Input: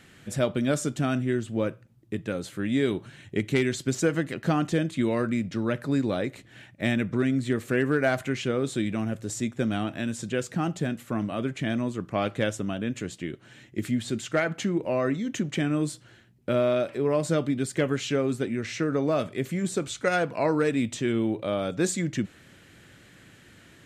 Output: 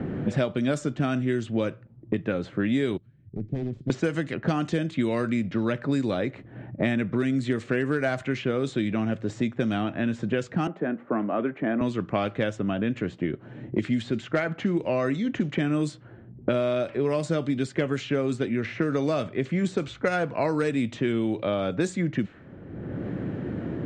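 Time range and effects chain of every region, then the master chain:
0:02.97–0:03.90: phase distortion by the signal itself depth 0.81 ms + guitar amp tone stack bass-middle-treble 10-0-1 + notch filter 2,800 Hz, Q 18
0:10.67–0:11.81: high-pass filter 160 Hz + three-way crossover with the lows and the highs turned down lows −19 dB, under 210 Hz, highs −21 dB, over 2,100 Hz
whole clip: low-pass that shuts in the quiet parts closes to 470 Hz, open at −20 dBFS; low-pass filter 8,800 Hz 24 dB per octave; multiband upward and downward compressor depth 100%

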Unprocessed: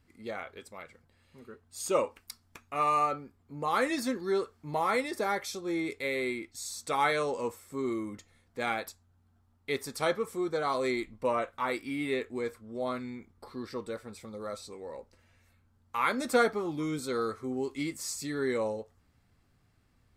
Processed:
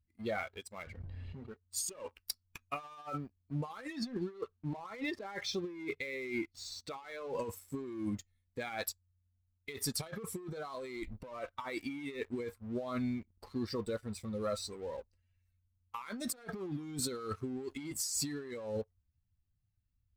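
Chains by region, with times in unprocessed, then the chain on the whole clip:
0:00.82–0:01.51: head-to-tape spacing loss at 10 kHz 21 dB + notch filter 1,300 Hz, Q 15 + envelope flattener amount 70%
0:03.93–0:07.39: low-pass filter 3,700 Hz + mains-hum notches 50/100/150 Hz
whole clip: spectral dynamics exaggerated over time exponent 1.5; compressor whose output falls as the input rises −44 dBFS, ratio −1; leveller curve on the samples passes 2; level −4 dB

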